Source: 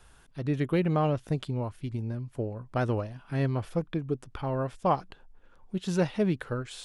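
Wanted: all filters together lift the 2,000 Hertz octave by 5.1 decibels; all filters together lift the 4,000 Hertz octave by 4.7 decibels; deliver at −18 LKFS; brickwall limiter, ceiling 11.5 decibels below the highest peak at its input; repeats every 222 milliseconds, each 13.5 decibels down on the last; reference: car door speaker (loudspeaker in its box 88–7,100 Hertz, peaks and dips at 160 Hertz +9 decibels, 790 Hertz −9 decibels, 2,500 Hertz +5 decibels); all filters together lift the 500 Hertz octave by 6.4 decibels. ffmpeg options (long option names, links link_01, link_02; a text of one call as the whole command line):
ffmpeg -i in.wav -af "equalizer=frequency=500:width_type=o:gain=8.5,equalizer=frequency=2000:width_type=o:gain=3.5,equalizer=frequency=4000:width_type=o:gain=3.5,alimiter=limit=-19dB:level=0:latency=1,highpass=88,equalizer=frequency=160:width_type=q:width=4:gain=9,equalizer=frequency=790:width_type=q:width=4:gain=-9,equalizer=frequency=2500:width_type=q:width=4:gain=5,lowpass=frequency=7100:width=0.5412,lowpass=frequency=7100:width=1.3066,aecho=1:1:222|444:0.211|0.0444,volume=10.5dB" out.wav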